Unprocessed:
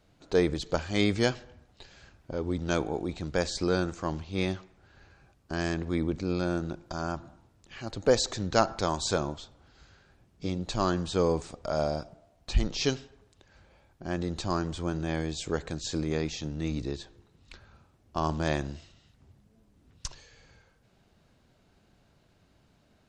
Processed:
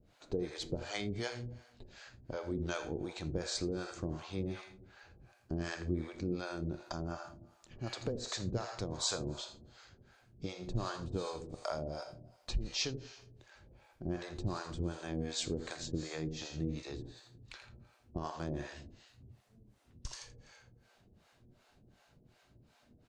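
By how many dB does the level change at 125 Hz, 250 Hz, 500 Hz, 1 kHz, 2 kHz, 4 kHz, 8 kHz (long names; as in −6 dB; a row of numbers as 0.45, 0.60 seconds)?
−7.0, −9.0, −11.0, −11.5, −9.5, −5.5, −5.0 decibels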